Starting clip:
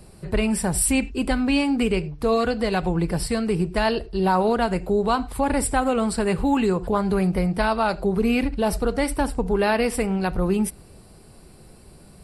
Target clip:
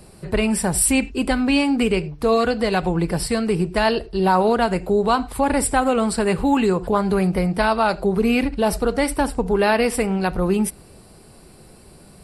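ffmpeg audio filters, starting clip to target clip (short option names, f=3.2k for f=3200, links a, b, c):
-af "lowshelf=f=130:g=-5.5,volume=3.5dB"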